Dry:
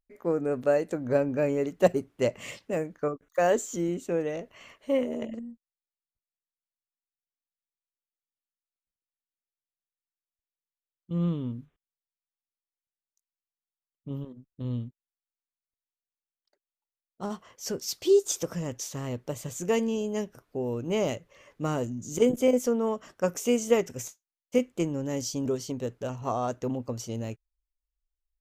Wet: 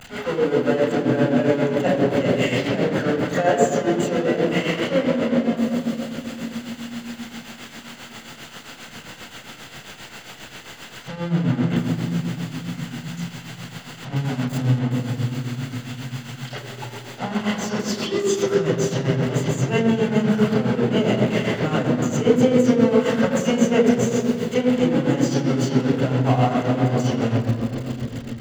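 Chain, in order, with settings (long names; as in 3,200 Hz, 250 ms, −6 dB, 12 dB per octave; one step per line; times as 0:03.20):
converter with a step at zero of −25 dBFS
parametric band 85 Hz −8.5 dB 0.96 octaves
convolution reverb RT60 3.5 s, pre-delay 4 ms, DRR −2 dB
shaped tremolo triangle 7.5 Hz, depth 70%
0:14.16–0:14.79: high-shelf EQ 5,100 Hz +11.5 dB
level −5.5 dB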